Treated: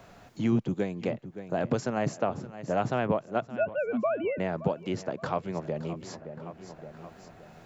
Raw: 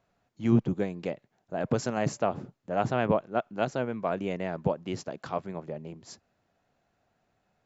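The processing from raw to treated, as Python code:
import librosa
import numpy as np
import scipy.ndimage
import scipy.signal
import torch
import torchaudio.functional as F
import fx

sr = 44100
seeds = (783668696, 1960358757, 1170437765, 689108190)

y = fx.sine_speech(x, sr, at=(3.46, 4.38))
y = fx.echo_feedback(y, sr, ms=569, feedback_pct=35, wet_db=-19)
y = fx.band_squash(y, sr, depth_pct=70)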